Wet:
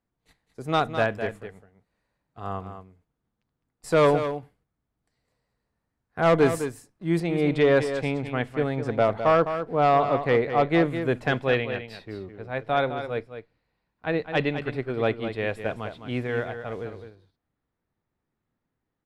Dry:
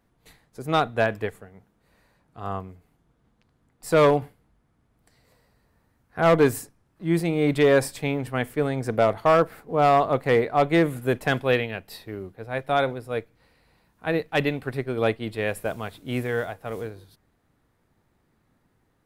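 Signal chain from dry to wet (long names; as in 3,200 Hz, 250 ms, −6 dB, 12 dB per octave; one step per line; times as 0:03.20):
low-pass filter 9,300 Hz 12 dB per octave, from 0:07.20 4,800 Hz
noise gate −50 dBFS, range −13 dB
single-tap delay 208 ms −9.5 dB
level −1.5 dB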